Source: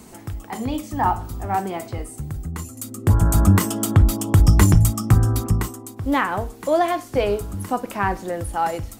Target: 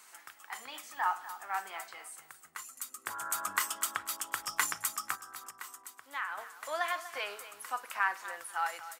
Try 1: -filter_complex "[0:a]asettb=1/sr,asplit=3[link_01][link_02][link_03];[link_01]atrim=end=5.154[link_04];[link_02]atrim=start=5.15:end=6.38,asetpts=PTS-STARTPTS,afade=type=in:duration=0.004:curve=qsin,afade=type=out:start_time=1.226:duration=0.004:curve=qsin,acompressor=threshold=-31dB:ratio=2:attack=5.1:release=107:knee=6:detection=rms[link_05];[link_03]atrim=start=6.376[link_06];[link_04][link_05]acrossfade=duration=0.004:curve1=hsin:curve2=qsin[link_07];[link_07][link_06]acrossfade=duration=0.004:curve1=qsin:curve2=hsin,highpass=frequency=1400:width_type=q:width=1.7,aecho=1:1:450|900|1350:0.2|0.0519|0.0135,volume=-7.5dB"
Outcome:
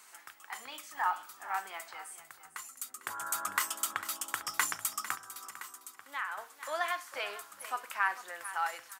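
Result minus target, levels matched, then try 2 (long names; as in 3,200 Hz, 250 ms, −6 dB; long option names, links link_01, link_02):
echo 206 ms late
-filter_complex "[0:a]asettb=1/sr,asplit=3[link_01][link_02][link_03];[link_01]atrim=end=5.154[link_04];[link_02]atrim=start=5.15:end=6.38,asetpts=PTS-STARTPTS,afade=type=in:duration=0.004:curve=qsin,afade=type=out:start_time=1.226:duration=0.004:curve=qsin,acompressor=threshold=-31dB:ratio=2:attack=5.1:release=107:knee=6:detection=rms[link_05];[link_03]atrim=start=6.376[link_06];[link_04][link_05]acrossfade=duration=0.004:curve1=hsin:curve2=qsin[link_07];[link_07][link_06]acrossfade=duration=0.004:curve1=qsin:curve2=hsin,highpass=frequency=1400:width_type=q:width=1.7,aecho=1:1:244|488|732:0.2|0.0519|0.0135,volume=-7.5dB"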